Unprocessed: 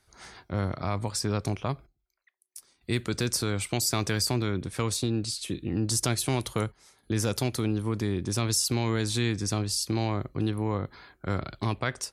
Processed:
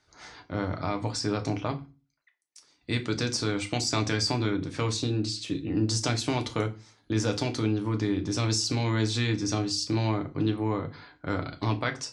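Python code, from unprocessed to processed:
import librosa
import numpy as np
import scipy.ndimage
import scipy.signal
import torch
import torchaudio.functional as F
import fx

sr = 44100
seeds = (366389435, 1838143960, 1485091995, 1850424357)

y = scipy.signal.sosfilt(scipy.signal.butter(4, 6700.0, 'lowpass', fs=sr, output='sos'), x)
y = fx.low_shelf(y, sr, hz=68.0, db=-12.0)
y = fx.rev_fdn(y, sr, rt60_s=0.3, lf_ratio=1.5, hf_ratio=0.9, size_ms=20.0, drr_db=4.5)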